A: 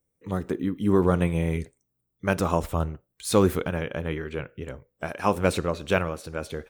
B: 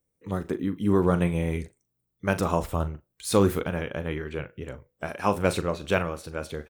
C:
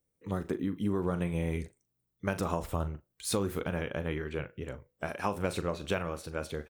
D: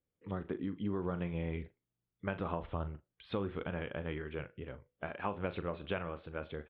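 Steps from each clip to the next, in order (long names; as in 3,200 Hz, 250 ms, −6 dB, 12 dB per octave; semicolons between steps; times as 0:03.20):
double-tracking delay 40 ms −12.5 dB; level −1 dB
downward compressor 10 to 1, threshold −24 dBFS, peak gain reduction 9.5 dB; level −2.5 dB
elliptic low-pass filter 3,400 Hz, stop band 50 dB; level −4.5 dB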